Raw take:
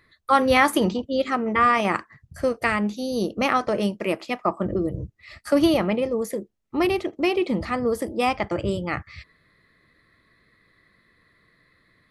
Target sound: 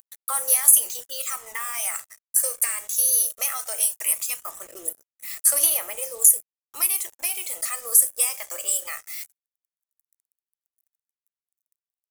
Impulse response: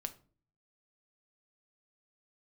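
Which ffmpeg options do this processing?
-filter_complex "[0:a]aderivative,asoftclip=type=tanh:threshold=0.0631,highpass=f=440:w=0.5412,highpass=f=440:w=1.3066,aeval=exprs='0.1*(cos(1*acos(clip(val(0)/0.1,-1,1)))-cos(1*PI/2))+0.00178*(cos(2*acos(clip(val(0)/0.1,-1,1)))-cos(2*PI/2))':c=same,asplit=2[s0][s1];[1:a]atrim=start_sample=2205[s2];[s1][s2]afir=irnorm=-1:irlink=0,volume=2.66[s3];[s0][s3]amix=inputs=2:normalize=0,acompressor=threshold=0.0178:ratio=2.5,acrusher=bits=7:mix=0:aa=0.5,aphaser=in_gain=1:out_gain=1:delay=1.8:decay=0.4:speed=0.18:type=sinusoidal,aexciter=amount=7:drive=8.2:freq=6500"

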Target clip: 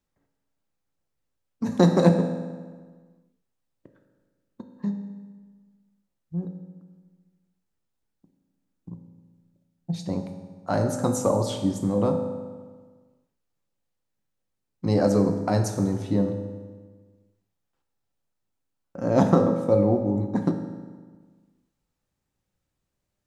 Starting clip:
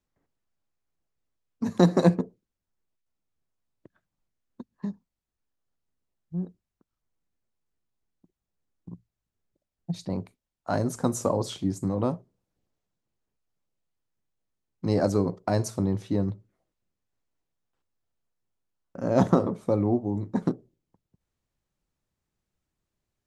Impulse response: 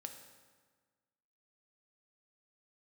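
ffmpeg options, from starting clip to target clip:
-filter_complex "[1:a]atrim=start_sample=2205[s0];[0:a][s0]afir=irnorm=-1:irlink=0,volume=2.11"

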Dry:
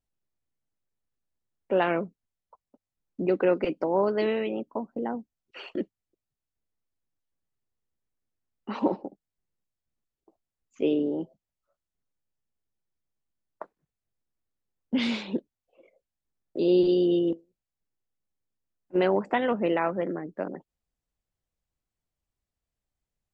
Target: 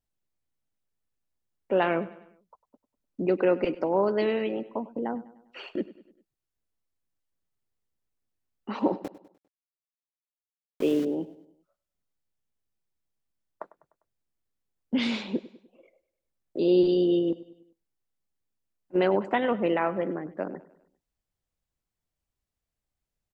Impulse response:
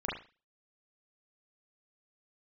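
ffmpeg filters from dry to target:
-filter_complex "[0:a]asettb=1/sr,asplit=3[s0][s1][s2];[s0]atrim=end=8.964[s3];[s1]atrim=start=8.96:end=11.05,asetpts=PTS-STARTPTS,afade=t=in:d=0.004:c=qsin,afade=t=out:st=2.086:d=0.004:c=qsin,aeval=exprs='val(0)*gte(abs(val(0)),0.015)':c=same[s4];[s2]atrim=start=11.046[s5];[s3][s4]acrossfade=d=0.004:c1=hsin:c2=qsin[s6];[s6][s5]acrossfade=d=0.004:c1=qsin:c2=hsin,aecho=1:1:100|200|300|400:0.126|0.0617|0.0302|0.0148"

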